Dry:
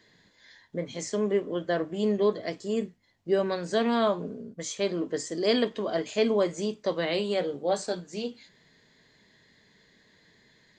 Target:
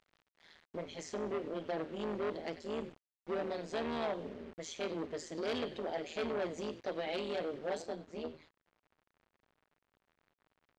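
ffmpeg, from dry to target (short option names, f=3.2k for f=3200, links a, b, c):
-filter_complex "[0:a]equalizer=f=1.3k:t=o:w=0.75:g=-13.5,tremolo=f=160:d=0.947,asplit=4[a][b][c][d];[b]adelay=92,afreqshift=-89,volume=-17.5dB[e];[c]adelay=184,afreqshift=-178,volume=-26.1dB[f];[d]adelay=276,afreqshift=-267,volume=-34.8dB[g];[a][e][f][g]amix=inputs=4:normalize=0,asoftclip=type=tanh:threshold=-30.5dB,aemphasis=mode=production:type=bsi,acrusher=bits=8:mix=0:aa=0.000001,asetnsamples=n=441:p=0,asendcmd='7.82 lowpass f 1700',lowpass=2.7k,volume=1.5dB"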